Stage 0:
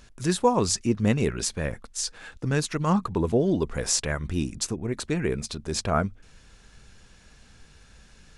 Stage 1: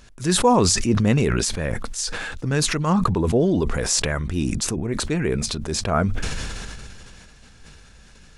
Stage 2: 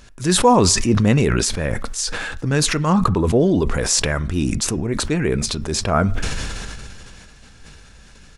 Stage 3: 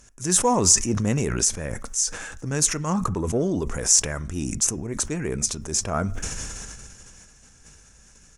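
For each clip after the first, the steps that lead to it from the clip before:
level that may fall only so fast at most 22 dB per second; level +2.5 dB
on a send at −19 dB: comb filter 7.2 ms, depth 88% + convolution reverb RT60 0.60 s, pre-delay 3 ms; on the sum: level +3 dB
harmonic generator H 7 −35 dB, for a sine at −2 dBFS; high shelf with overshoot 5,100 Hz +6.5 dB, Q 3; level −7.5 dB

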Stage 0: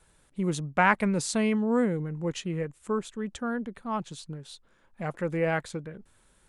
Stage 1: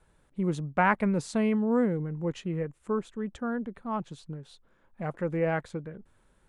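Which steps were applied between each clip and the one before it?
high-shelf EQ 2,700 Hz −12 dB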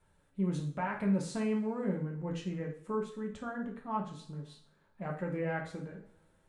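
brickwall limiter −21 dBFS, peak gain reduction 11 dB
coupled-rooms reverb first 0.45 s, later 1.9 s, from −25 dB, DRR −1 dB
level −7 dB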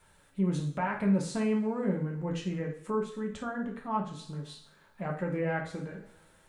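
one half of a high-frequency compander encoder only
level +3.5 dB

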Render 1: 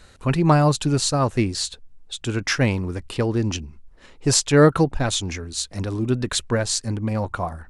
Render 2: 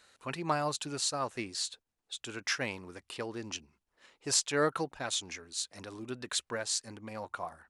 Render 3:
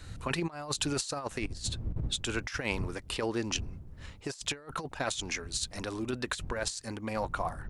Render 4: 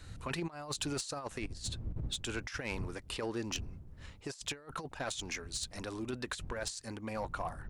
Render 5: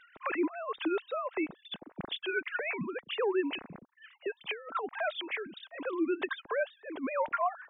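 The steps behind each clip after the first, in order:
high-pass filter 810 Hz 6 dB per octave; level −8.5 dB
wind on the microphone 90 Hz −45 dBFS; compressor whose output falls as the input rises −37 dBFS, ratio −0.5; every ending faded ahead of time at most 510 dB per second; level +4.5 dB
soft clipping −22 dBFS, distortion −19 dB; level −4 dB
three sine waves on the formant tracks; level +5 dB

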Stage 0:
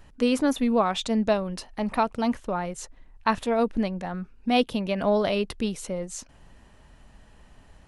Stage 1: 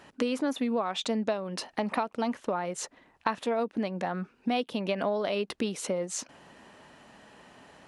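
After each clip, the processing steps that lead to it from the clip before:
high-pass filter 240 Hz 12 dB per octave
high-shelf EQ 8,300 Hz −9 dB
downward compressor 6 to 1, threshold −33 dBFS, peak gain reduction 15 dB
level +6.5 dB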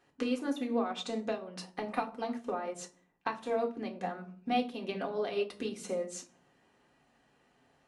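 convolution reverb RT60 0.60 s, pre-delay 3 ms, DRR 0.5 dB
expander for the loud parts 1.5 to 1, over −45 dBFS
level −5.5 dB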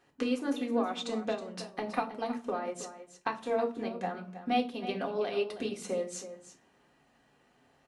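single-tap delay 320 ms −12.5 dB
level +1.5 dB

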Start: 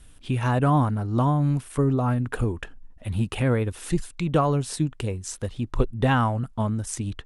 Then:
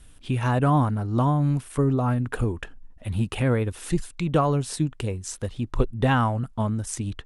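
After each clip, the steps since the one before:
no processing that can be heard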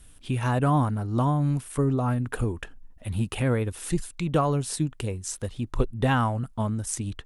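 high-shelf EQ 9,100 Hz +9 dB
level −2 dB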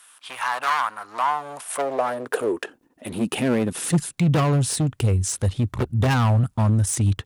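in parallel at +1 dB: output level in coarse steps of 21 dB
on the sum: gain into a clipping stage and back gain 24 dB
high-pass filter sweep 1,100 Hz → 92 Hz, 0:01.00–0:04.75
level +4.5 dB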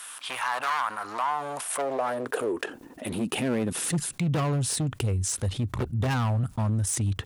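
envelope flattener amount 50%
level −8.5 dB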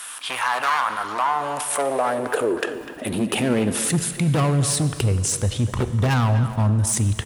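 far-end echo of a speakerphone 250 ms, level −11 dB
convolution reverb RT60 2.4 s, pre-delay 5 ms, DRR 11.5 dB
level +6 dB

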